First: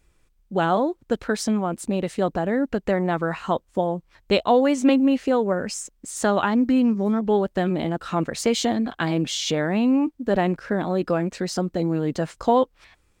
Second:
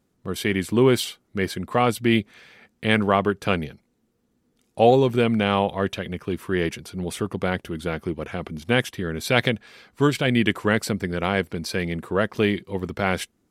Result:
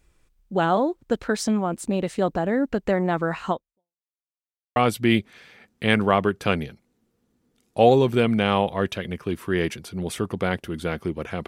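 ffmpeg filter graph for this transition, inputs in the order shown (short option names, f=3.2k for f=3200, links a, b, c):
-filter_complex "[0:a]apad=whole_dur=11.47,atrim=end=11.47,asplit=2[a][b];[a]atrim=end=4.04,asetpts=PTS-STARTPTS,afade=t=out:st=3.51:d=0.53:c=exp[c];[b]atrim=start=4.04:end=4.76,asetpts=PTS-STARTPTS,volume=0[d];[1:a]atrim=start=1.77:end=8.48,asetpts=PTS-STARTPTS,afade=t=in:d=0.004:c=hsin[e];[c][d][e]concat=n=3:v=0:a=1"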